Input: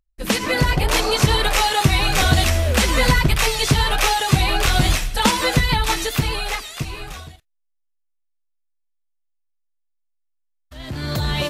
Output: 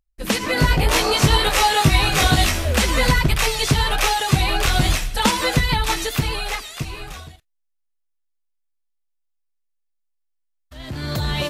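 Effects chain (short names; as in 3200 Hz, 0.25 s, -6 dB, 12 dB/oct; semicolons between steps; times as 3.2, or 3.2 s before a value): 0.55–2.65 doubler 19 ms -2 dB; gain -1 dB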